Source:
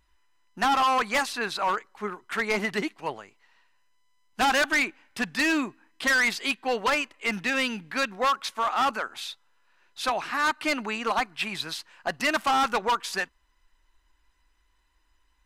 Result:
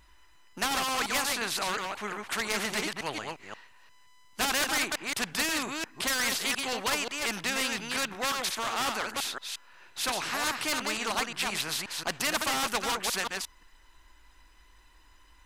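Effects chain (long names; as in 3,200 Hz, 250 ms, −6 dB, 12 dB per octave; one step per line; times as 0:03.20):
delay that plays each chunk backwards 177 ms, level −6.5 dB
every bin compressed towards the loudest bin 2 to 1
level +1.5 dB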